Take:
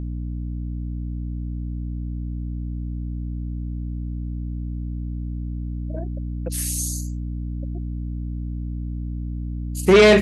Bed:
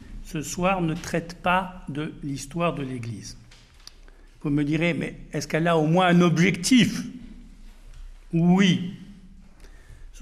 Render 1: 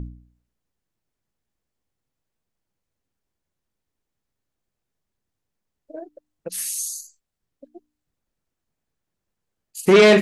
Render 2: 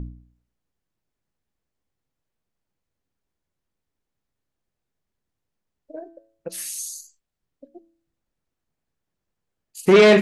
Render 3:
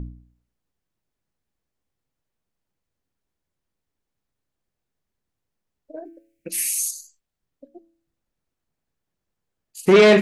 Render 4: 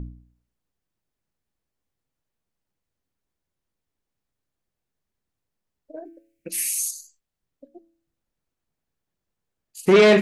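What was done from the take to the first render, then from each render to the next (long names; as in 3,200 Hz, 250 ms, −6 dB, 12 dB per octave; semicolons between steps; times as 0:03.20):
hum removal 60 Hz, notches 5
high-shelf EQ 5,300 Hz −5.5 dB; hum removal 111 Hz, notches 31
0:06.05–0:06.91: drawn EQ curve 180 Hz 0 dB, 270 Hz +10 dB, 780 Hz −16 dB, 1,200 Hz −13 dB, 2,300 Hz +14 dB, 3,500 Hz +1 dB, 12,000 Hz +10 dB
level −1.5 dB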